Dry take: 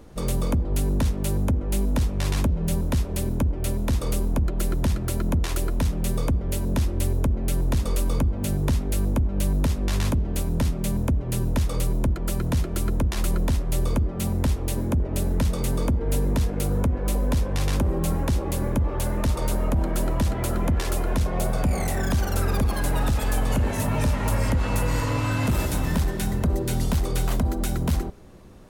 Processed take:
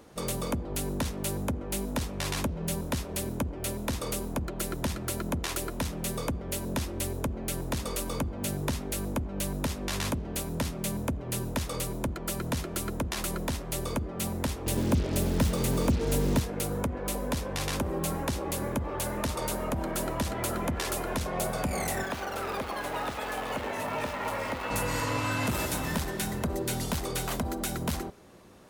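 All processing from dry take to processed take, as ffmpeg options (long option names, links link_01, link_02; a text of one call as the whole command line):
ffmpeg -i in.wav -filter_complex "[0:a]asettb=1/sr,asplit=3[link_01][link_02][link_03];[link_01]atrim=end=14.664[link_04];[link_02]atrim=start=14.66:end=16.4,asetpts=PTS-STARTPTS,afade=type=in:duration=0.004:curve=qsin,afade=type=out:start_time=1.736:duration=0.004:curve=qsin,lowshelf=frequency=420:gain=7.5,acrusher=bits=5:mix=0:aa=0.5[link_05];[link_03]atrim=start=16.396[link_06];[link_04][link_05]acrossfade=duration=0.004:curve1=hsin:curve2=qsin[link_07];[link_07][link_06]acrossfade=duration=0.004:curve1=qsin:curve2=hsin,asettb=1/sr,asplit=3[link_08][link_09][link_10];[link_08]atrim=end=22.034[link_11];[link_09]atrim=start=22.03:end=24.71,asetpts=PTS-STARTPTS,afade=type=in:duration=0.004:curve=qsin,afade=type=out:start_time=2.676:duration=0.004:curve=qsin,acrusher=bits=4:mode=log:mix=0:aa=0.000001,bass=frequency=250:gain=-11,treble=frequency=4000:gain=-13,bandreject=frequency=1600:width=20[link_12];[link_10]atrim=start=24.706[link_13];[link_11][link_12]acrossfade=duration=0.004:curve1=hsin:curve2=qsin[link_14];[link_14][link_13]acrossfade=duration=0.004:curve1=qsin:curve2=hsin,highpass=frequency=140:poles=1,lowshelf=frequency=450:gain=-5.5" out.wav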